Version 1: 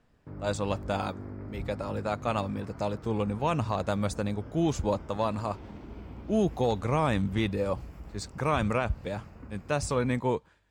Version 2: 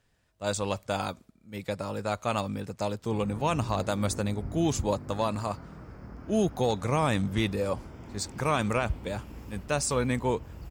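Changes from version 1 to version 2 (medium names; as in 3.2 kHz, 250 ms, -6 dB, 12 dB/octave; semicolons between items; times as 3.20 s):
background: entry +2.85 s; master: add treble shelf 4.9 kHz +10.5 dB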